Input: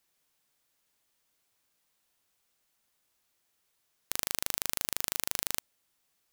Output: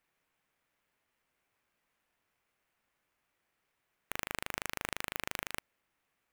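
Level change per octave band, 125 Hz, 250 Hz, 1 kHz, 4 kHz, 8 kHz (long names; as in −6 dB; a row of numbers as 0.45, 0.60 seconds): +0.5, +0.5, +1.0, −6.5, −11.5 decibels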